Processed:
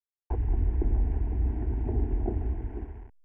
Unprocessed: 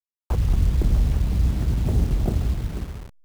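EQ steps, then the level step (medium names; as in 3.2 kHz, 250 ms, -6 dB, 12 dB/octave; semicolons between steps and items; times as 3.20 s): low-pass 1.4 kHz 12 dB/octave; dynamic bell 420 Hz, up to +5 dB, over -40 dBFS, Q 0.72; static phaser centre 820 Hz, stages 8; -5.0 dB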